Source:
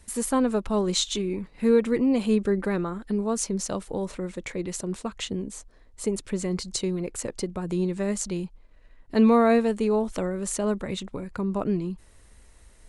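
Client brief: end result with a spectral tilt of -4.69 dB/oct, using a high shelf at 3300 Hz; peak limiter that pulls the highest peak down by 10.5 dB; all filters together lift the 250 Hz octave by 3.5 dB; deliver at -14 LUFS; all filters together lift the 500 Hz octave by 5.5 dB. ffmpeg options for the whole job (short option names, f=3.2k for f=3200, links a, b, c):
-af "equalizer=f=250:t=o:g=3,equalizer=f=500:t=o:g=5.5,highshelf=f=3.3k:g=7.5,volume=11dB,alimiter=limit=-4dB:level=0:latency=1"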